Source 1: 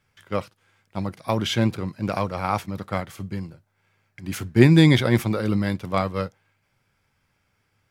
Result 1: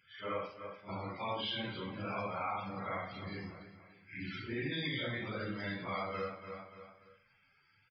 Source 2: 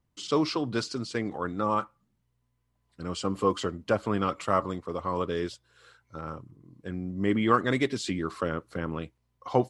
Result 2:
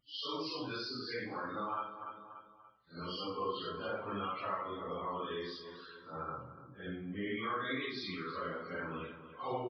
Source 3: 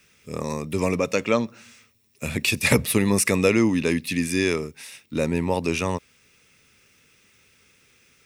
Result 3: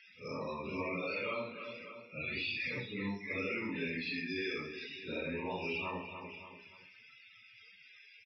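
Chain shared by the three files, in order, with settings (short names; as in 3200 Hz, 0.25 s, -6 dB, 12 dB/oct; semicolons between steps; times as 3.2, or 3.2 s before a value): phase scrambler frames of 0.2 s; tilt shelf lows -5.5 dB, about 1300 Hz; limiter -16 dBFS; feedback echo 0.29 s, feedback 39%, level -17 dB; compressor 3:1, threshold -40 dBFS; loudest bins only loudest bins 64; downsampling 11025 Hz; low shelf 140 Hz -7.5 dB; two-slope reverb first 0.63 s, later 1.6 s, DRR 7 dB; gain +1.5 dB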